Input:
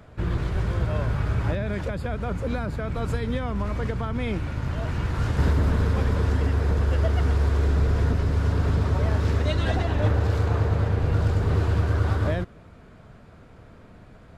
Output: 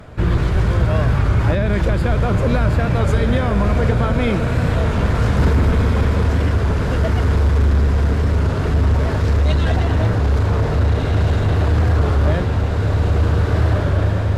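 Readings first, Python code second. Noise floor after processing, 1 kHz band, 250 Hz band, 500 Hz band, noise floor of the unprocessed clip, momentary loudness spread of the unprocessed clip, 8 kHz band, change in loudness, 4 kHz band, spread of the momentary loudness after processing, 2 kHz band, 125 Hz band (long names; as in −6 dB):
−20 dBFS, +8.5 dB, +8.5 dB, +8.5 dB, −49 dBFS, 6 LU, can't be measured, +7.5 dB, +8.0 dB, 2 LU, +8.5 dB, +8.0 dB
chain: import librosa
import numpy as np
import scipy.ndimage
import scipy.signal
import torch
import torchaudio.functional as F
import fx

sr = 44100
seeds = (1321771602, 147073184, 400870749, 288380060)

p1 = fx.echo_diffused(x, sr, ms=1645, feedback_pct=50, wet_db=-3.0)
p2 = fx.fold_sine(p1, sr, drive_db=7, ceiling_db=-8.0)
p3 = p1 + F.gain(torch.from_numpy(p2), -9.0).numpy()
p4 = fx.rider(p3, sr, range_db=3, speed_s=2.0)
y = fx.record_warp(p4, sr, rpm=33.33, depth_cents=100.0)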